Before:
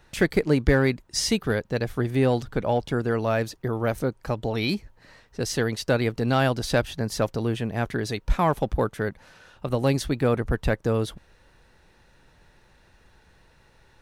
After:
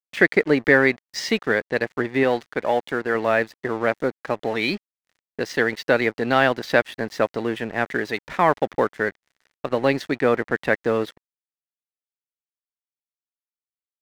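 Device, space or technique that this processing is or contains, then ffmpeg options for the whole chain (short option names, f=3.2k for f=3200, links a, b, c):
pocket radio on a weak battery: -filter_complex "[0:a]asettb=1/sr,asplit=3[a][b][c];[a]atrim=end=2.234[d];[b]atrim=start=2.23:end=3.15,asetpts=PTS-STARTPTS,afade=t=in:d=0.004:c=qsin,afade=t=out:st=0.916:d=0.004:c=qsin,lowshelf=f=340:g=-5[e];[c]atrim=start=3.146[f];[d][e]acrossfade=d=0.004:c1=hsin:c2=qsin[g];[g][f]acrossfade=d=0.004:c1=qsin:c2=hsin,highpass=270,lowpass=3.8k,aeval=exprs='sgn(val(0))*max(abs(val(0))-0.00562,0)':c=same,equalizer=f=1.9k:t=o:w=0.46:g=8,volume=5dB"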